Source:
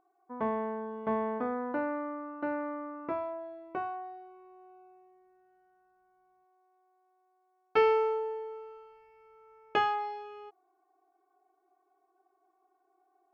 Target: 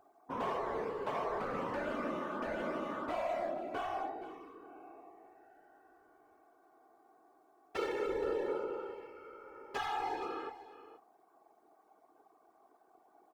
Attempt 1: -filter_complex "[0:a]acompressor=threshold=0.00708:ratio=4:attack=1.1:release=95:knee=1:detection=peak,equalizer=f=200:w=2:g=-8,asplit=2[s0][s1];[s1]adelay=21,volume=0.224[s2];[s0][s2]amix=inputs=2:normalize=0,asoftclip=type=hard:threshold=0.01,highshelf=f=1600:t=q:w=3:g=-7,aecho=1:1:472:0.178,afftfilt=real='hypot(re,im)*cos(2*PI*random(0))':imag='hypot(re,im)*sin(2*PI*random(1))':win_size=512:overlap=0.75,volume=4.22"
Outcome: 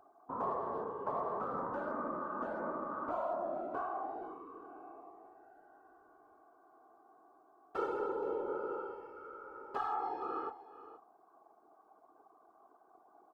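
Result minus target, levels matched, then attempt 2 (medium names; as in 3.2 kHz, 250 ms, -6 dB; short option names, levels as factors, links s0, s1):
compression: peak gain reduction +5 dB; 2 kHz band -4.5 dB
-filter_complex "[0:a]acompressor=threshold=0.015:ratio=4:attack=1.1:release=95:knee=1:detection=peak,equalizer=f=200:w=2:g=-8,asplit=2[s0][s1];[s1]adelay=21,volume=0.224[s2];[s0][s2]amix=inputs=2:normalize=0,asoftclip=type=hard:threshold=0.01,aecho=1:1:472:0.178,afftfilt=real='hypot(re,im)*cos(2*PI*random(0))':imag='hypot(re,im)*sin(2*PI*random(1))':win_size=512:overlap=0.75,volume=4.22"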